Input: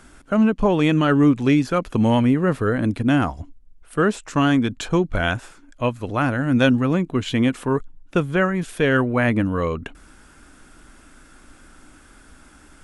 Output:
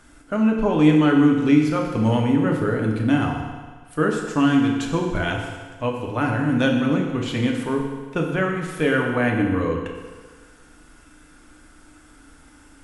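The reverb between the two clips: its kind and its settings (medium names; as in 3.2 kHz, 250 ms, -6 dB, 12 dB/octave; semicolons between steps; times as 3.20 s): FDN reverb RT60 1.5 s, low-frequency decay 0.85×, high-frequency decay 0.95×, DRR 0 dB; trim -4.5 dB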